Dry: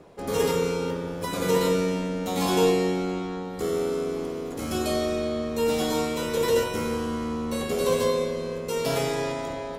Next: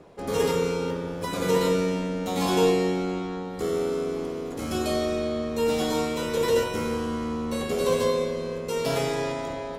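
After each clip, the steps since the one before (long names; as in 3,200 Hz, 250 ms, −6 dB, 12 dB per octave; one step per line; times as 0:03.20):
high-shelf EQ 10,000 Hz −5.5 dB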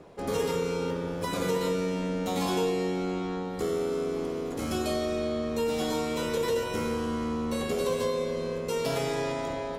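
downward compressor 3 to 1, threshold −26 dBFS, peak gain reduction 7.5 dB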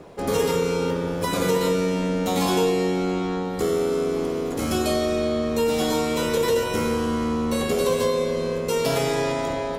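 high-shelf EQ 10,000 Hz +4.5 dB
level +6.5 dB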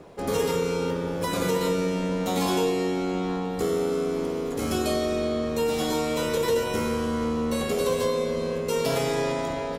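slap from a distant wall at 150 metres, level −13 dB
level −3 dB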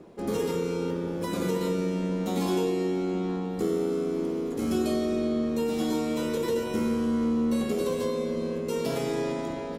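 hollow resonant body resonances 220/330 Hz, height 11 dB, ringing for 50 ms
level −7 dB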